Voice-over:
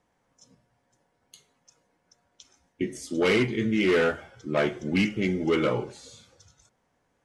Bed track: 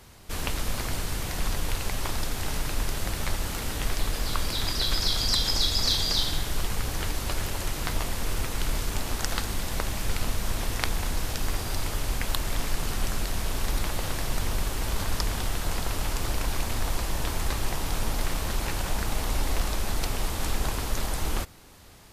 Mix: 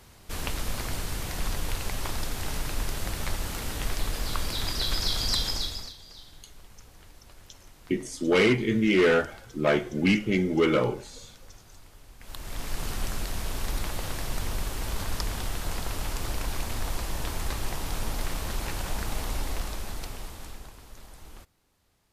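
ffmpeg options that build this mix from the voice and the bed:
ffmpeg -i stem1.wav -i stem2.wav -filter_complex "[0:a]adelay=5100,volume=1.5dB[link_01];[1:a]volume=17.5dB,afade=type=out:start_time=5.38:duration=0.55:silence=0.0944061,afade=type=in:start_time=12.18:duration=0.65:silence=0.105925,afade=type=out:start_time=19.19:duration=1.53:silence=0.158489[link_02];[link_01][link_02]amix=inputs=2:normalize=0" out.wav

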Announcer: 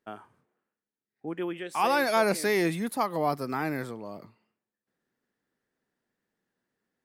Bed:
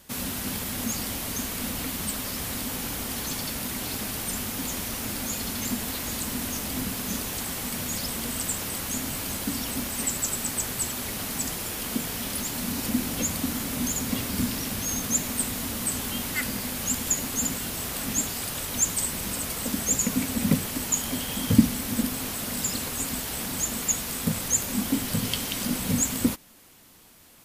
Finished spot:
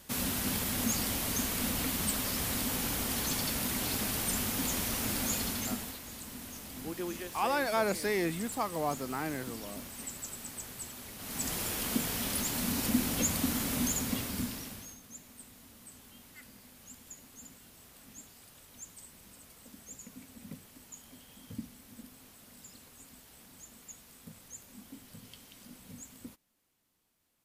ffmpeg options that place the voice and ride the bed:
ffmpeg -i stem1.wav -i stem2.wav -filter_complex "[0:a]adelay=5600,volume=-5.5dB[link_01];[1:a]volume=10dB,afade=type=out:start_time=5.33:duration=0.67:silence=0.237137,afade=type=in:start_time=11.18:duration=0.4:silence=0.266073,afade=type=out:start_time=13.76:duration=1.21:silence=0.0841395[link_02];[link_01][link_02]amix=inputs=2:normalize=0" out.wav

